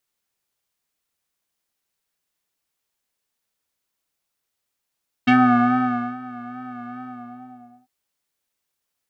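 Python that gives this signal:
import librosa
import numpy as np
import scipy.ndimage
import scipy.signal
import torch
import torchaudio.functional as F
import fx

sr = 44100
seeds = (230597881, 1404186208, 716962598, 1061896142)

y = fx.sub_patch_vibrato(sr, seeds[0], note=59, wave='square', wave2='saw', interval_st=19, detune_cents=24, level2_db=-9, sub_db=-15.0, noise_db=-30.0, kind='lowpass', cutoff_hz=750.0, q=2.6, env_oct=2.0, env_decay_s=0.1, env_sustain_pct=40, attack_ms=12.0, decay_s=0.89, sustain_db=-21.0, release_s=0.9, note_s=1.7, lfo_hz=2.4, vibrato_cents=42)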